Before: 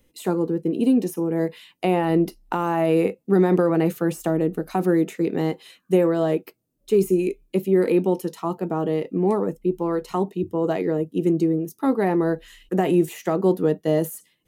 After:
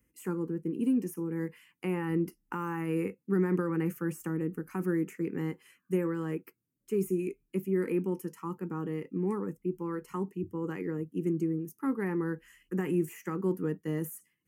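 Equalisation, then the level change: HPF 47 Hz 24 dB/oct; fixed phaser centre 1600 Hz, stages 4; -7.0 dB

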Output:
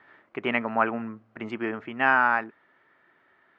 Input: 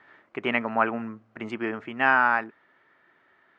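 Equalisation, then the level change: air absorption 77 m; 0.0 dB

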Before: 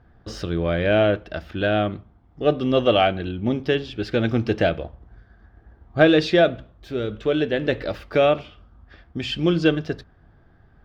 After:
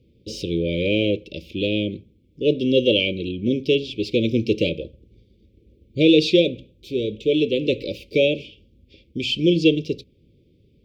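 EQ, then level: HPF 220 Hz 6 dB/oct; Chebyshev band-stop 560–2300 Hz, order 5; Butterworth band-stop 960 Hz, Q 0.85; +5.0 dB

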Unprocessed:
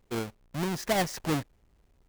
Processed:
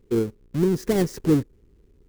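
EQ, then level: resonant low shelf 530 Hz +8 dB, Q 3; dynamic EQ 2800 Hz, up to -5 dB, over -44 dBFS, Q 0.81; 0.0 dB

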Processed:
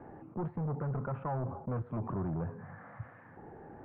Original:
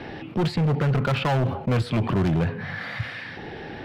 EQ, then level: ladder low-pass 1400 Hz, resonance 35%; air absorption 410 m; -5.5 dB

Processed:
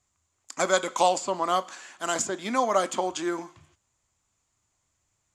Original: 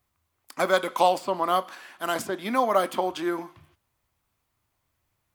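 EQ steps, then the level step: synth low-pass 7100 Hz, resonance Q 7.7; -1.5 dB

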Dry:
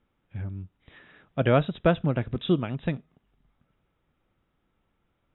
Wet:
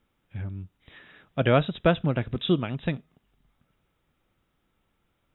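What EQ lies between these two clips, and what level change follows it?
high shelf 3100 Hz +8.5 dB; 0.0 dB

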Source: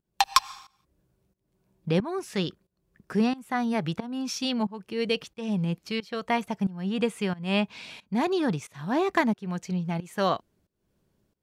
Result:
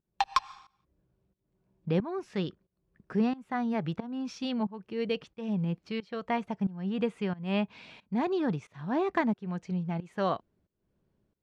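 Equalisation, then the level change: tape spacing loss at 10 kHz 20 dB; -2.5 dB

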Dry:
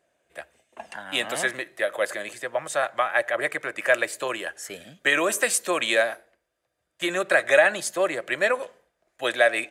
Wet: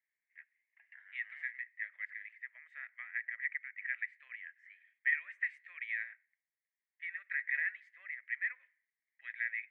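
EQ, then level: Butterworth band-pass 2000 Hz, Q 5.1; -6.5 dB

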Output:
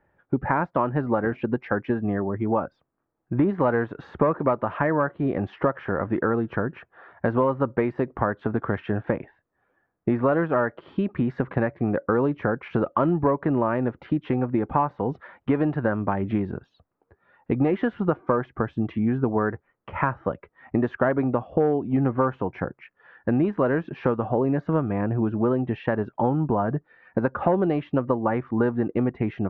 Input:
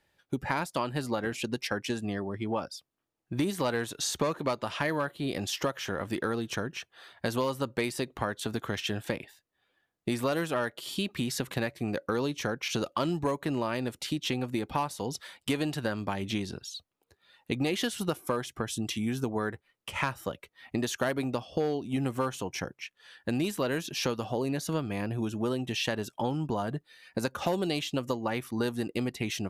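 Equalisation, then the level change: LPF 1600 Hz 24 dB/oct; +8.0 dB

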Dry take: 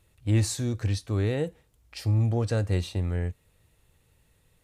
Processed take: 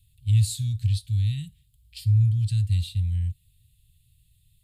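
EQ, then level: elliptic band-stop 130–3300 Hz, stop band 80 dB; bell 5900 Hz -15 dB 0.4 oct; +4.5 dB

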